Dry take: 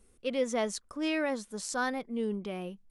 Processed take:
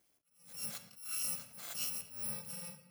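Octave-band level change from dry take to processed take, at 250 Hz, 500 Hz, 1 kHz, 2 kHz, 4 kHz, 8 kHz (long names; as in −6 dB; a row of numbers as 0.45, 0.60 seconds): −23.0, −27.0, −20.0, −16.0, −4.0, +1.5 decibels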